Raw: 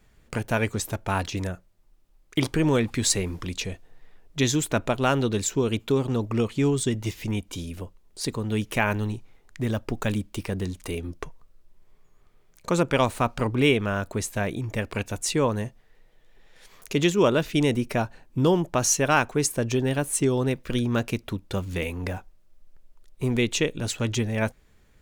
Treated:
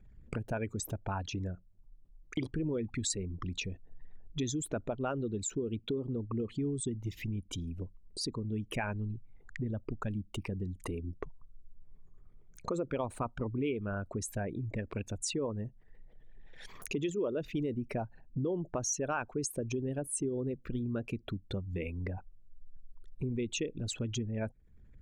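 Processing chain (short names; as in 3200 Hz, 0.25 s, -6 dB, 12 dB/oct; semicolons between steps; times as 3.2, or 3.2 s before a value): formant sharpening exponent 2; compressor 2.5:1, threshold -43 dBFS, peak gain reduction 18 dB; gain +3.5 dB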